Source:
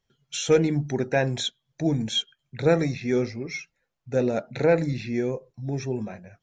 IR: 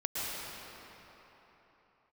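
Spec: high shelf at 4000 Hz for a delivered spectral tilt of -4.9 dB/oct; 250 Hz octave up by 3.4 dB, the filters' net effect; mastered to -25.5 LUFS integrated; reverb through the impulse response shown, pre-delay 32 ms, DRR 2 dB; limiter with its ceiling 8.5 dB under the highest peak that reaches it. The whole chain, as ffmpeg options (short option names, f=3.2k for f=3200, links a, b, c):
-filter_complex "[0:a]equalizer=f=250:t=o:g=4.5,highshelf=f=4k:g=7.5,alimiter=limit=-14.5dB:level=0:latency=1,asplit=2[a][b];[1:a]atrim=start_sample=2205,adelay=32[c];[b][c]afir=irnorm=-1:irlink=0,volume=-8.5dB[d];[a][d]amix=inputs=2:normalize=0,volume=-1dB"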